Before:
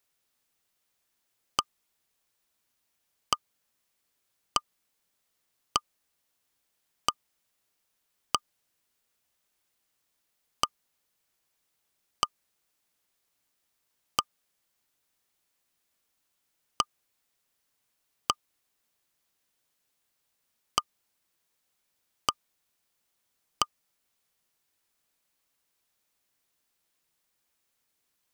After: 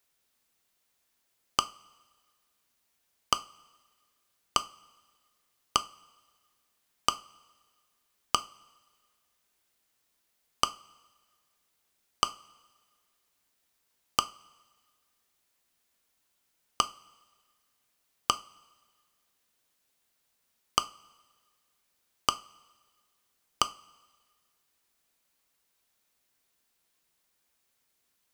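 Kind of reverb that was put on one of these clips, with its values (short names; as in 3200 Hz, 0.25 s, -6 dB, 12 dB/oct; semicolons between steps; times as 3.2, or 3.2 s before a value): two-slope reverb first 0.28 s, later 1.6 s, from -20 dB, DRR 10 dB; gain +1.5 dB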